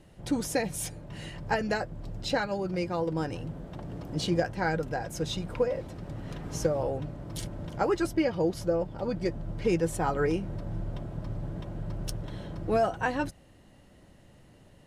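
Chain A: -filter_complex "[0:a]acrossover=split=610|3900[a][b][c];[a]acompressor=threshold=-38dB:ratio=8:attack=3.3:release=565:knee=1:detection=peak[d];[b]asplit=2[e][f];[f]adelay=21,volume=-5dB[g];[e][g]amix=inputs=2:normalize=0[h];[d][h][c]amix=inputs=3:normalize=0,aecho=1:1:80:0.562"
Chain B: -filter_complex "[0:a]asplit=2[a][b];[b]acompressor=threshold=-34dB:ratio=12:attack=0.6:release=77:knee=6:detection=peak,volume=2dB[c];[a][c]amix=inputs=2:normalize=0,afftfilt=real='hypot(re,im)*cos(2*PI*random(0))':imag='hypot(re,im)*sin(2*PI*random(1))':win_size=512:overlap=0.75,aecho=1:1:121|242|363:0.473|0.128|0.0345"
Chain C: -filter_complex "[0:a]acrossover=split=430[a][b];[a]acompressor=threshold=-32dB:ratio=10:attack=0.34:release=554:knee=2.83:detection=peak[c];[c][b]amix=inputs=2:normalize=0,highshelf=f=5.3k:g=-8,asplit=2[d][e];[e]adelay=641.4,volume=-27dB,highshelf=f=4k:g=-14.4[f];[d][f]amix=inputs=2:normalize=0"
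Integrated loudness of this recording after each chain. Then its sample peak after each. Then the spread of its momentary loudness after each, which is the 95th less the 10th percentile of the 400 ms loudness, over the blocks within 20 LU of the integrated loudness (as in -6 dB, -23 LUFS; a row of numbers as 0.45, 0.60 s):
-34.5, -34.0, -34.0 LUFS; -13.5, -15.5, -14.0 dBFS; 13, 8, 10 LU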